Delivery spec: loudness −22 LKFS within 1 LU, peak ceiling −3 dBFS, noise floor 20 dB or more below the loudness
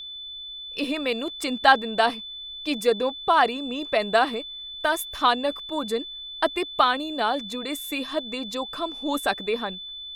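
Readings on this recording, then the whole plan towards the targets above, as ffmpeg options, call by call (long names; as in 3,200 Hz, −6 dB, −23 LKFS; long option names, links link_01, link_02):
interfering tone 3,500 Hz; level of the tone −35 dBFS; integrated loudness −25.0 LKFS; sample peak −4.5 dBFS; target loudness −22.0 LKFS
→ -af "bandreject=frequency=3500:width=30"
-af "volume=3dB,alimiter=limit=-3dB:level=0:latency=1"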